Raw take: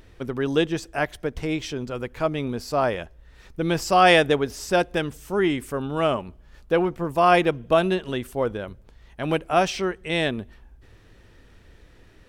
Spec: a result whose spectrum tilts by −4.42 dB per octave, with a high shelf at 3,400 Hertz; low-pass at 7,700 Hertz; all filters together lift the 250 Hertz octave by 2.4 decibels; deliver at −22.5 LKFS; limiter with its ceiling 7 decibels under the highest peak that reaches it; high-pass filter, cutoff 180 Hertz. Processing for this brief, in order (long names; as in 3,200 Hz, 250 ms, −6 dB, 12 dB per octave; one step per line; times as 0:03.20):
high-pass filter 180 Hz
low-pass filter 7,700 Hz
parametric band 250 Hz +5 dB
high-shelf EQ 3,400 Hz −5 dB
level +2 dB
brickwall limiter −8.5 dBFS